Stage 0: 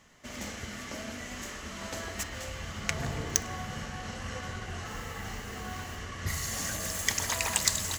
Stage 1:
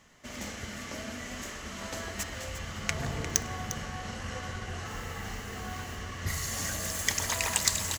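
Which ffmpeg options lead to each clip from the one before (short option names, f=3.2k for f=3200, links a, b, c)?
-af "aecho=1:1:352:0.266"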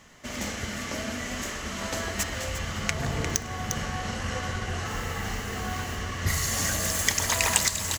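-af "alimiter=limit=-10dB:level=0:latency=1:release=441,volume=6.5dB"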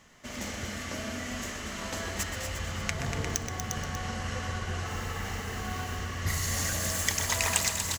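-af "aecho=1:1:125.4|239.1:0.282|0.398,volume=-4.5dB"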